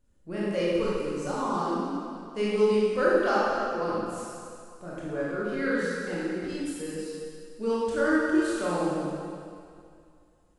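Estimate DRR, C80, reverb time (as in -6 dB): -8.0 dB, -1.5 dB, 2.3 s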